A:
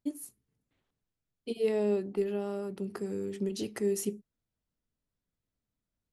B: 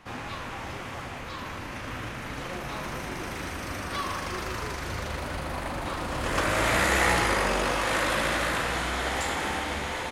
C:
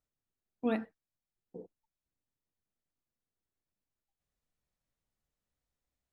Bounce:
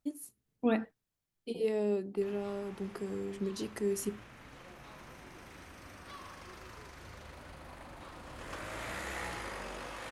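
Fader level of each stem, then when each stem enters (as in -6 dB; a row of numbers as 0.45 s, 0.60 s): -3.0 dB, -17.0 dB, +2.5 dB; 0.00 s, 2.15 s, 0.00 s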